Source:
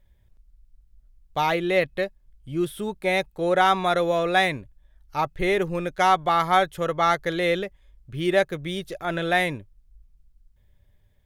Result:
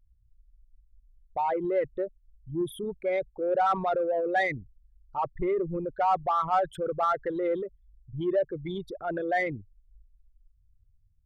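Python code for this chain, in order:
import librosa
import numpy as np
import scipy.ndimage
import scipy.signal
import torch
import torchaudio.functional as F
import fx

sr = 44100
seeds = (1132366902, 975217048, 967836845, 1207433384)

p1 = fx.envelope_sharpen(x, sr, power=3.0)
p2 = 10.0 ** (-21.5 / 20.0) * np.tanh(p1 / 10.0 ** (-21.5 / 20.0))
p3 = p1 + F.gain(torch.from_numpy(p2), -5.0).numpy()
y = F.gain(torch.from_numpy(p3), -7.5).numpy()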